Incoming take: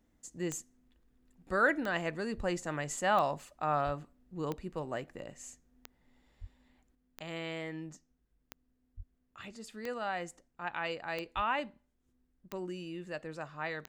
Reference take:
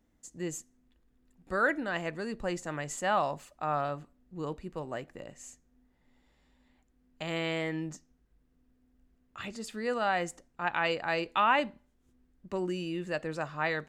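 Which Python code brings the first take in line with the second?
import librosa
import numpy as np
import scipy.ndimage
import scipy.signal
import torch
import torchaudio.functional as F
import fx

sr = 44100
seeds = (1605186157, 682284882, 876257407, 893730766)

y = fx.fix_declick_ar(x, sr, threshold=10.0)
y = fx.fix_deplosive(y, sr, at_s=(2.36, 3.85, 6.4, 8.96, 11.35))
y = fx.gain(y, sr, db=fx.steps((0.0, 0.0), (6.95, 7.0)))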